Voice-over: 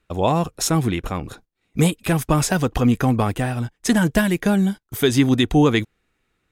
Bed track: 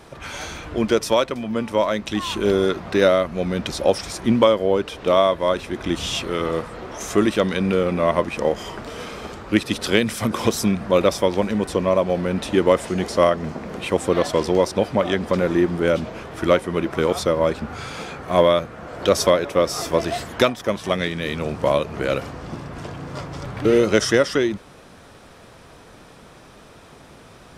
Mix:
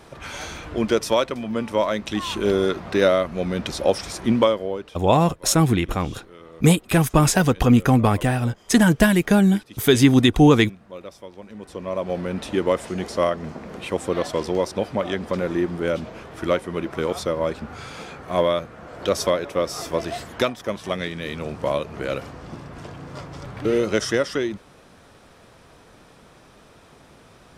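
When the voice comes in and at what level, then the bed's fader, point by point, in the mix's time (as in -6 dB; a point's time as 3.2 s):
4.85 s, +2.0 dB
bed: 4.41 s -1.5 dB
5.23 s -21 dB
11.37 s -21 dB
12.13 s -4.5 dB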